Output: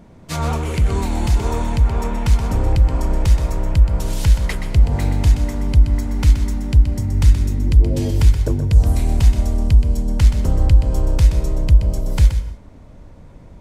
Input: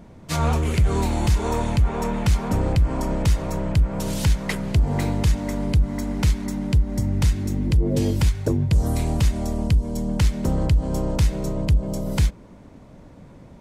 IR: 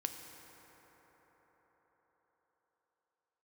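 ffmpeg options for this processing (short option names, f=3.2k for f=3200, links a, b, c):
-filter_complex "[0:a]asubboost=boost=3:cutoff=87,asplit=2[a][b];[1:a]atrim=start_sample=2205,afade=t=out:st=0.24:d=0.01,atrim=end_sample=11025,adelay=125[c];[b][c]afir=irnorm=-1:irlink=0,volume=-7.5dB[d];[a][d]amix=inputs=2:normalize=0"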